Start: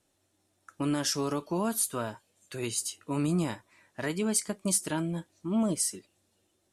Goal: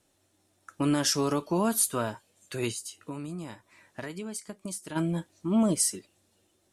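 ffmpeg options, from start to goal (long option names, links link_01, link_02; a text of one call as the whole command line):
ffmpeg -i in.wav -filter_complex "[0:a]asplit=3[link_01][link_02][link_03];[link_01]afade=type=out:start_time=2.71:duration=0.02[link_04];[link_02]acompressor=threshold=-39dB:ratio=6,afade=type=in:start_time=2.71:duration=0.02,afade=type=out:start_time=4.95:duration=0.02[link_05];[link_03]afade=type=in:start_time=4.95:duration=0.02[link_06];[link_04][link_05][link_06]amix=inputs=3:normalize=0,volume=3.5dB" out.wav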